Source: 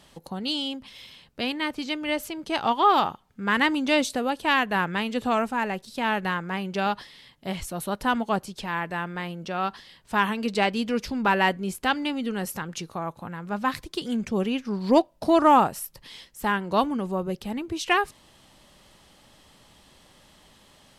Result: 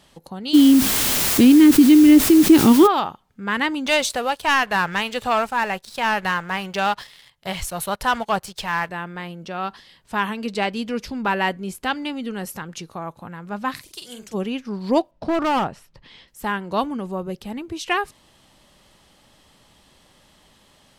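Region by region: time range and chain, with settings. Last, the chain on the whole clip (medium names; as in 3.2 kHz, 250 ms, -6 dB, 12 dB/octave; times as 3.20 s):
0.53–2.86 s: resonant low shelf 470 Hz +13 dB, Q 3 + added noise white -33 dBFS + level flattener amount 50%
3.86–8.89 s: peaking EQ 270 Hz -14 dB 1.2 oct + waveshaping leveller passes 2
13.76–14.33 s: spectral peaks clipped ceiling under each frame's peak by 13 dB + pre-emphasis filter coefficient 0.8 + doubling 45 ms -6 dB
15.11–16.28 s: low-pass 5.7 kHz + tone controls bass +3 dB, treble -8 dB + hard clipper -17 dBFS
whole clip: none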